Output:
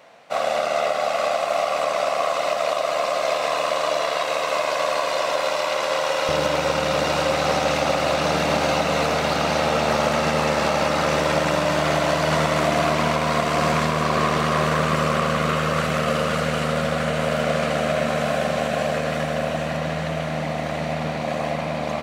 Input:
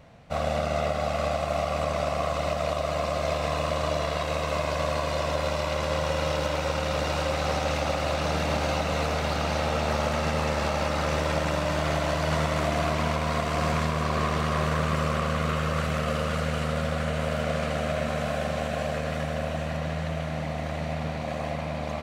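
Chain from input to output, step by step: HPF 480 Hz 12 dB/oct, from 6.29 s 160 Hz; gain +7 dB

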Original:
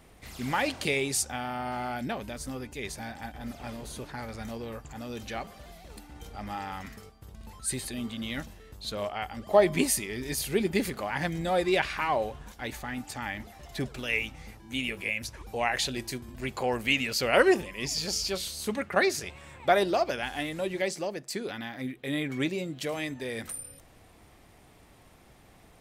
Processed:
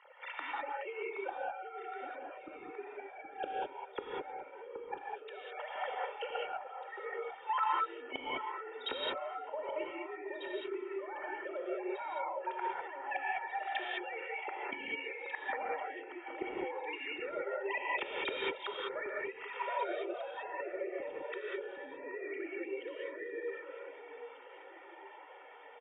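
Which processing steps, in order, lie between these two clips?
sine-wave speech; HPF 480 Hz 12 dB/oct; gate -57 dBFS, range -8 dB; LPF 1900 Hz 6 dB/oct; comb 2.2 ms, depth 88%; compressor, threshold -29 dBFS, peak gain reduction 13.5 dB; flipped gate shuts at -43 dBFS, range -28 dB; echo with dull and thin repeats by turns 0.772 s, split 1200 Hz, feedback 56%, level -8 dB; non-linear reverb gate 0.23 s rising, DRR -3.5 dB; gain +17.5 dB

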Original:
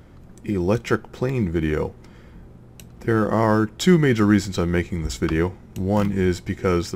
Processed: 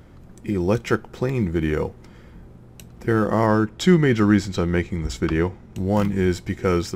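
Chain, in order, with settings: 3.46–5.78 high shelf 9200 Hz -9.5 dB

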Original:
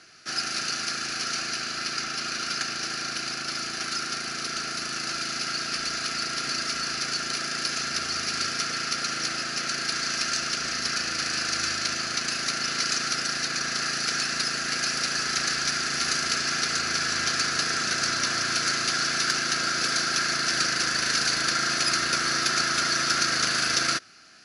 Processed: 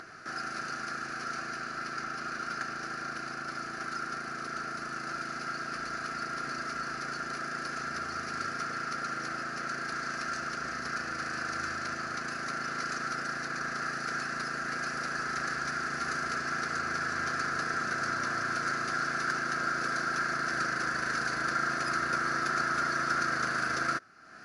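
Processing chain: resonant high shelf 2100 Hz -12 dB, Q 1.5; upward compressor, threshold -34 dBFS; gain -3.5 dB

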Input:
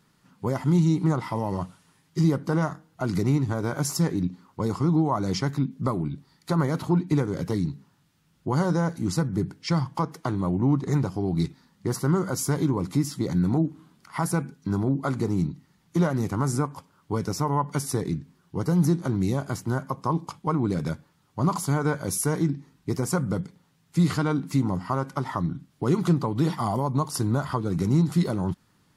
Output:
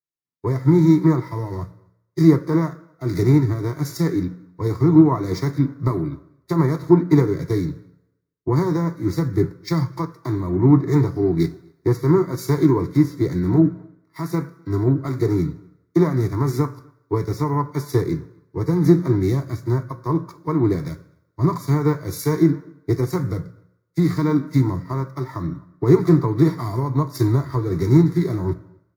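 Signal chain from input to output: spectral whitening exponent 0.6; spectral noise reduction 8 dB; in parallel at 0 dB: compressor, threshold -29 dBFS, peak gain reduction 12.5 dB; on the sum: careless resampling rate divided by 2×, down none, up hold; requantised 10-bit, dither triangular; fixed phaser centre 790 Hz, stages 6; outdoor echo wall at 44 m, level -22 dB; reverb RT60 2.1 s, pre-delay 3 ms, DRR 13.5 dB; three-band expander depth 100%; gain -9.5 dB

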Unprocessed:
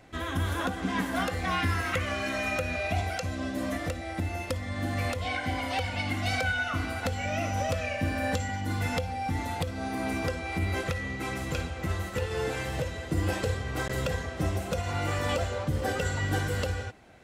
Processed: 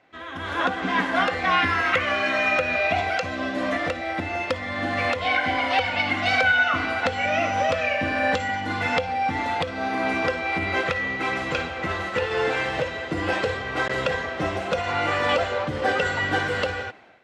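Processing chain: LPF 3300 Hz 12 dB/oct; AGC gain up to 14 dB; HPF 620 Hz 6 dB/oct; gain -2 dB

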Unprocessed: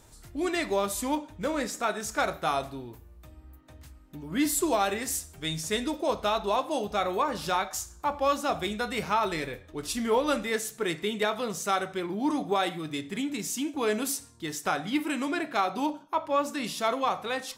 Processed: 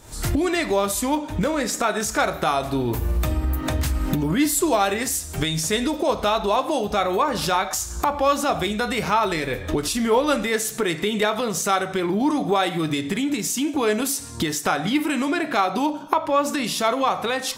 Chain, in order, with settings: recorder AGC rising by 79 dB/s; gain +6 dB

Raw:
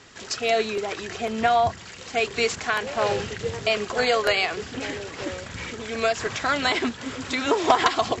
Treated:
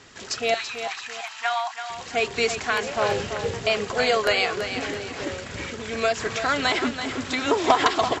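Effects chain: 0.54–1.9 steep high-pass 750 Hz 96 dB/oct; on a send: feedback echo 0.333 s, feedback 38%, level -9 dB

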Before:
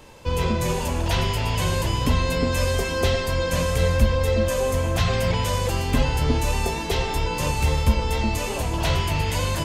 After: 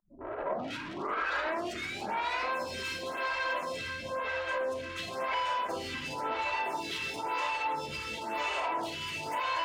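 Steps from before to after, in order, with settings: tape start at the beginning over 2.47 s; limiter -19 dBFS, peak gain reduction 11 dB; spectral gate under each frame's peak -25 dB strong; overdrive pedal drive 24 dB, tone 1800 Hz, clips at -18 dBFS; HPF 1000 Hz 6 dB/oct; diffused feedback echo 0.636 s, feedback 45%, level -10 dB; reverb RT60 0.80 s, pre-delay 3 ms, DRR 0.5 dB; compressor 4:1, threshold -28 dBFS, peak gain reduction 6.5 dB; photocell phaser 0.97 Hz

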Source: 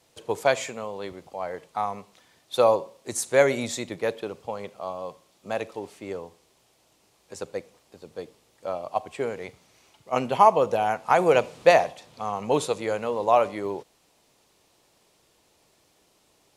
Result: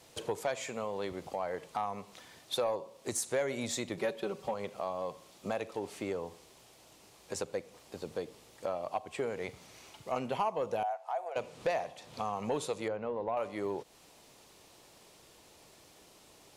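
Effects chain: 3.97–4.54 comb 5.3 ms, depth 91%; compressor 3:1, threshold -39 dBFS, peak gain reduction 20.5 dB; soft clip -27 dBFS, distortion -19 dB; 10.83–11.36 ladder high-pass 640 Hz, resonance 75%; 12.88–13.37 tape spacing loss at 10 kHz 33 dB; gain +5 dB

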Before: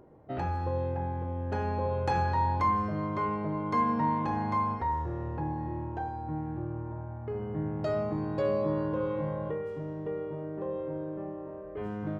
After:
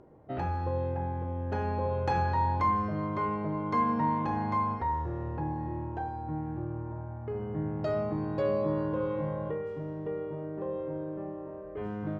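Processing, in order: air absorption 54 m

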